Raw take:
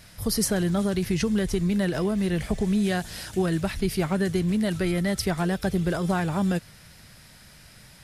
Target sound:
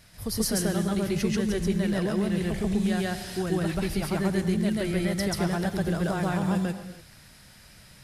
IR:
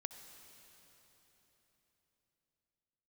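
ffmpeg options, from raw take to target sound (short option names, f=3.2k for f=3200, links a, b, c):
-filter_complex "[0:a]asplit=2[a][b];[1:a]atrim=start_sample=2205,afade=t=out:st=0.35:d=0.01,atrim=end_sample=15876,adelay=136[c];[b][c]afir=irnorm=-1:irlink=0,volume=5dB[d];[a][d]amix=inputs=2:normalize=0,volume=-5.5dB"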